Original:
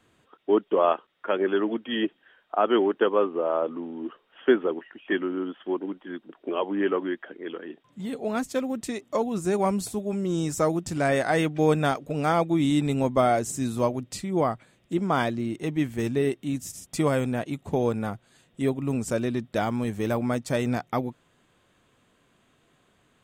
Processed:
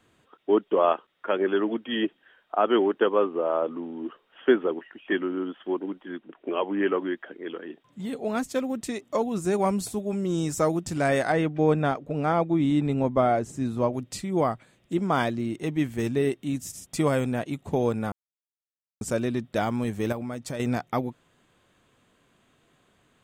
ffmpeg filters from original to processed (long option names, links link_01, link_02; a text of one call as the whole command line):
ffmpeg -i in.wav -filter_complex "[0:a]asettb=1/sr,asplit=3[link_01][link_02][link_03];[link_01]atrim=end=6.164[link_04];[link_02]atrim=start=6.16:end=6.94,asetpts=PTS-STARTPTS,afade=type=in:duration=0.004:curve=qsin,afade=type=out:start_time=0.776:duration=0.004:curve=qsin,highshelf=frequency=3800:width_type=q:width=1.5:gain=-10[link_05];[link_03]atrim=start=6.936[link_06];[link_04][link_05]acrossfade=duration=0.004:curve1=hsin:curve2=qsin[link_07];[link_07][link_06]acrossfade=duration=0.004:curve1=qsin:curve2=hsin,asettb=1/sr,asplit=3[link_08][link_09][link_10];[link_08]atrim=end=11.324[link_11];[link_09]atrim=start=11.32:end=13.93,asetpts=PTS-STARTPTS,afade=type=in:duration=0.004:curve=qsin,afade=type=out:start_time=2.606:duration=0.004:curve=qsin,lowpass=frequency=1700:poles=1[link_12];[link_10]atrim=start=13.926[link_13];[link_11][link_12]acrossfade=duration=0.004:curve1=hsin:curve2=qsin[link_14];[link_14][link_13]acrossfade=duration=0.004:curve1=qsin:curve2=hsin,asettb=1/sr,asplit=3[link_15][link_16][link_17];[link_15]atrim=end=20.124[link_18];[link_16]atrim=start=20.12:end=20.6,asetpts=PTS-STARTPTS,afade=type=in:duration=0.004:curve=qsin,afade=type=out:start_time=0.476:duration=0.004:curve=qsin,acompressor=threshold=-29dB:ratio=6:attack=3.2:release=140:knee=1:detection=peak[link_19];[link_17]atrim=start=20.596[link_20];[link_18][link_19]acrossfade=duration=0.004:curve1=hsin:curve2=qsin[link_21];[link_21][link_20]acrossfade=duration=0.004:curve1=qsin:curve2=hsin,asplit=3[link_22][link_23][link_24];[link_22]atrim=end=18.12,asetpts=PTS-STARTPTS,afade=type=out:start_time=18.116:duration=0.004:curve=hsin[link_25];[link_23]atrim=start=18.12:end=19.01,asetpts=PTS-STARTPTS,volume=0[link_26];[link_24]atrim=start=19.01,asetpts=PTS-STARTPTS,afade=type=in:duration=0.004:curve=hsin[link_27];[link_25][link_26][link_27]concat=n=3:v=0:a=1" out.wav